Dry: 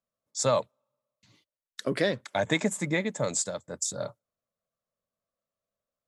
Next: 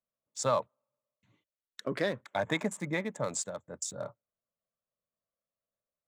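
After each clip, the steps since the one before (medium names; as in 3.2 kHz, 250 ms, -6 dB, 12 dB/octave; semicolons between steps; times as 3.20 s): local Wiener filter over 9 samples; dynamic bell 1.1 kHz, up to +6 dB, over -42 dBFS, Q 1.5; trim -5.5 dB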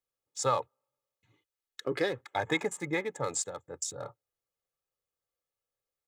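comb 2.4 ms, depth 69%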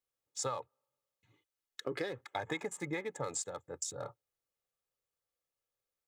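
compression 6:1, threshold -32 dBFS, peak gain reduction 9.5 dB; trim -1.5 dB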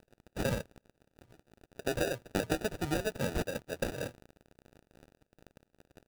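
crackle 550 per s -51 dBFS; sample-and-hold 41×; trim +5.5 dB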